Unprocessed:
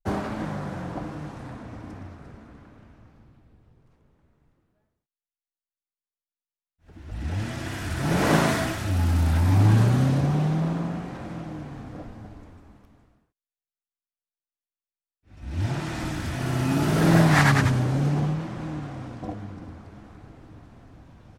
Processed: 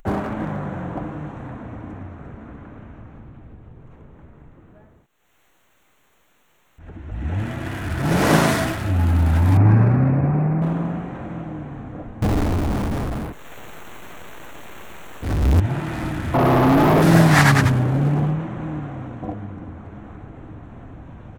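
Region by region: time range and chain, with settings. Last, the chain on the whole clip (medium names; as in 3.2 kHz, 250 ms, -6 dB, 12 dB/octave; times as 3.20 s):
9.57–10.62 s: companding laws mixed up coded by A + steep low-pass 2.6 kHz 96 dB/octave + tape noise reduction on one side only decoder only
12.22–15.60 s: tilt shelf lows +5.5 dB, about 1.5 kHz + power-law waveshaper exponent 0.35 + tape noise reduction on one side only encoder only
16.34–17.02 s: brick-wall FIR band-stop 1.3–11 kHz + overdrive pedal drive 34 dB, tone 1.5 kHz, clips at -12.5 dBFS
whole clip: local Wiener filter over 9 samples; treble shelf 9 kHz +6.5 dB; upward compressor, threshold -35 dBFS; trim +4.5 dB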